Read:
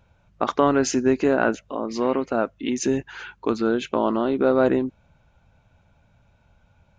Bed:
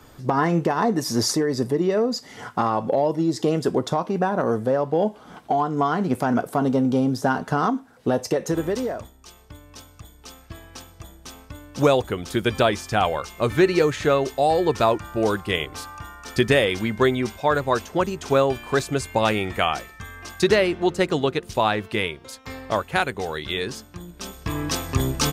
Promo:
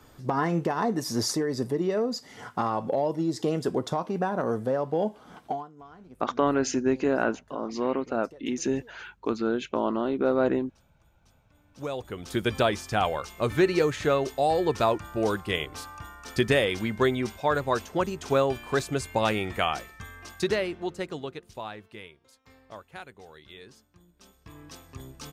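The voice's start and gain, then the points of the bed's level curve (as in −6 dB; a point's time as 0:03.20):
5.80 s, −5.0 dB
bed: 0:05.49 −5.5 dB
0:05.73 −27 dB
0:11.44 −27 dB
0:12.35 −4.5 dB
0:20.01 −4.5 dB
0:22.10 −20.5 dB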